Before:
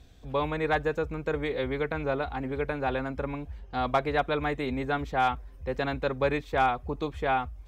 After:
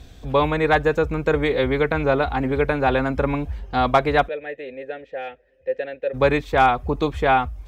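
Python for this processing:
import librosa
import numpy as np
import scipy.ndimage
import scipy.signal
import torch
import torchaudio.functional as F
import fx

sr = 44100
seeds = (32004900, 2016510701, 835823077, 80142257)

p1 = fx.rider(x, sr, range_db=4, speed_s=0.5)
p2 = x + (p1 * 10.0 ** (-1.5 / 20.0))
p3 = fx.vowel_filter(p2, sr, vowel='e', at=(4.27, 6.13), fade=0.02)
y = p3 * 10.0 ** (4.0 / 20.0)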